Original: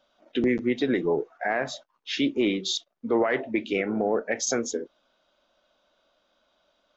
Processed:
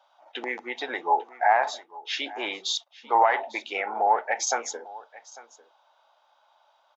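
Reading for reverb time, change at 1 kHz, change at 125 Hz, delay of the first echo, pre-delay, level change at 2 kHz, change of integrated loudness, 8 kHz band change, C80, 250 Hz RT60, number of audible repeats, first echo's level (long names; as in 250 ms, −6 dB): no reverb audible, +12.0 dB, below −25 dB, 848 ms, no reverb audible, +2.0 dB, +0.5 dB, can't be measured, no reverb audible, no reverb audible, 1, −20.0 dB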